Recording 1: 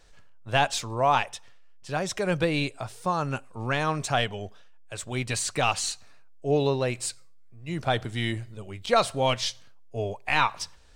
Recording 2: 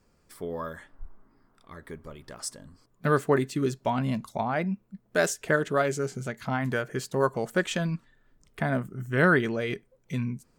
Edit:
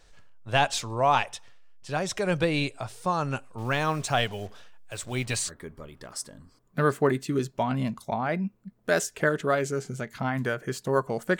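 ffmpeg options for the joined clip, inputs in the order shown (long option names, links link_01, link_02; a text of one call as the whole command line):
ffmpeg -i cue0.wav -i cue1.wav -filter_complex "[0:a]asettb=1/sr,asplit=3[link_01][link_02][link_03];[link_01]atrim=end=3.584[link_04];[link_02]atrim=start=3.58:end=5.52,asetpts=PTS-STARTPTS,afade=type=in:duration=0.004:curve=qsin,afade=type=out:start_time=1.936:duration=0.004:curve=qsin,acrusher=bits=7:mix=0:aa=0.5[link_05];[link_03]atrim=start=5.516[link_06];[link_04][link_05]acrossfade=duration=0.004:curve1=hsin:curve2=qsin[link_07];[link_07][link_06]acrossfade=duration=0.004:curve1=qsin:curve2=hsin,apad=whole_dur=11.39,atrim=end=11.39,atrim=end=5.52,asetpts=PTS-STARTPTS[link_08];[1:a]atrim=start=1.71:end=7.66,asetpts=PTS-STARTPTS[link_09];[link_08][link_09]acrossfade=duration=0.08:curve1=tri:curve2=tri" out.wav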